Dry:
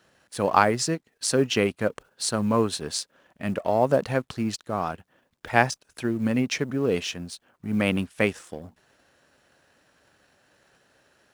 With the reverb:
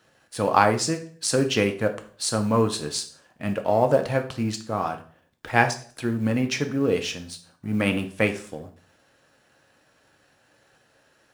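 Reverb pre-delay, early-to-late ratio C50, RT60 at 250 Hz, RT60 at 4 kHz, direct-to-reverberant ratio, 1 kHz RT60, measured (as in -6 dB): 3 ms, 12.0 dB, 0.60 s, 0.40 s, 5.0 dB, 0.40 s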